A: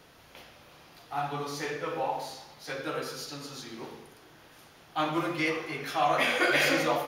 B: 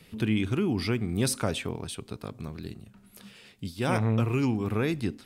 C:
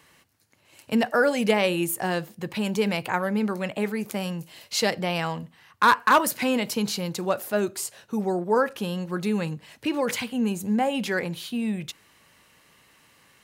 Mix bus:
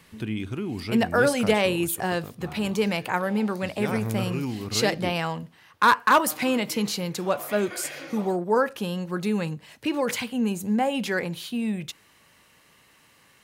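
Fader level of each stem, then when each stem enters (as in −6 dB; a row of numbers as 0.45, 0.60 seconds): −14.0, −4.0, 0.0 decibels; 1.30, 0.00, 0.00 seconds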